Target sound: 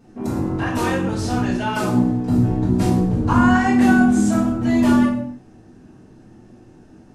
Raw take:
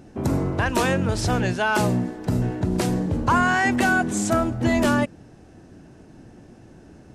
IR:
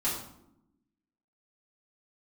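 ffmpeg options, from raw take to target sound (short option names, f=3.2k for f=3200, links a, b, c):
-filter_complex "[0:a]asettb=1/sr,asplit=3[a][b][c];[a]atrim=end=1.934[d];[b]atrim=start=1.93:end=4.25,asetpts=PTS-STARTPTS,afade=t=in:d=0.004:c=qsin,afade=t=out:st=2.316:d=0.004:c=qsin,lowshelf=f=340:g=6.5[e];[c]atrim=start=4.246[f];[d][e]acrossfade=d=0.004:c1=hsin:c2=qsin[g];[g][f]acrossfade=d=0.004:c1=qsin:c2=hsin[h];[1:a]atrim=start_sample=2205,afade=t=out:st=0.41:d=0.01,atrim=end_sample=18522[i];[h][i]afir=irnorm=-1:irlink=0,volume=-8.5dB"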